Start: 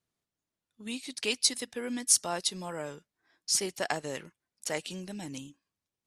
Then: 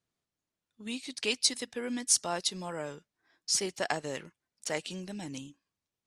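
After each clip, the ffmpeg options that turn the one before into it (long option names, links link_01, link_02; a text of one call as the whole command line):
ffmpeg -i in.wav -af "lowpass=9000" out.wav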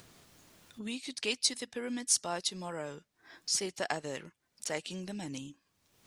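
ffmpeg -i in.wav -af "acompressor=mode=upward:threshold=-32dB:ratio=2.5,volume=-2.5dB" out.wav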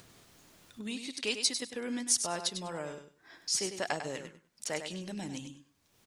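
ffmpeg -i in.wav -af "aecho=1:1:99|198|297:0.376|0.0677|0.0122" out.wav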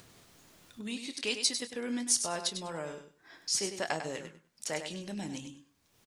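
ffmpeg -i in.wav -filter_complex "[0:a]asplit=2[link_01][link_02];[link_02]adelay=25,volume=-12dB[link_03];[link_01][link_03]amix=inputs=2:normalize=0" out.wav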